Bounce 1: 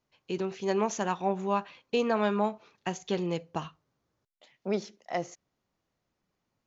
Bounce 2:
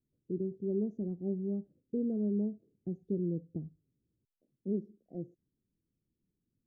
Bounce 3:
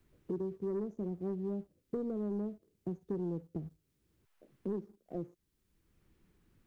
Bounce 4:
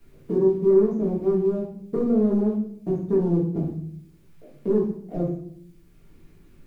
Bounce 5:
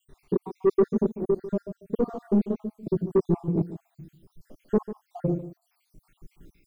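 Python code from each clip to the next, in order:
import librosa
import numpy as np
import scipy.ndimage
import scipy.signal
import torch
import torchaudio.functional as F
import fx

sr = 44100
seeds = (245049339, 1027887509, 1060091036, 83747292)

y1 = scipy.signal.sosfilt(scipy.signal.cheby2(4, 50, 930.0, 'lowpass', fs=sr, output='sos'), x)
y2 = fx.graphic_eq(y1, sr, hz=(125, 250, 500), db=(-11, -12, -5))
y2 = fx.leveller(y2, sr, passes=1)
y2 = fx.band_squash(y2, sr, depth_pct=70)
y2 = y2 * 10.0 ** (6.0 / 20.0)
y3 = fx.room_shoebox(y2, sr, seeds[0], volume_m3=96.0, walls='mixed', distance_m=1.7)
y3 = y3 * 10.0 ** (6.0 / 20.0)
y4 = fx.spec_dropout(y3, sr, seeds[1], share_pct=72)
y4 = 10.0 ** (-17.0 / 20.0) * np.tanh(y4 / 10.0 ** (-17.0 / 20.0))
y4 = y4 + 10.0 ** (-13.5 / 20.0) * np.pad(y4, (int(145 * sr / 1000.0), 0))[:len(y4)]
y4 = y4 * 10.0 ** (3.5 / 20.0)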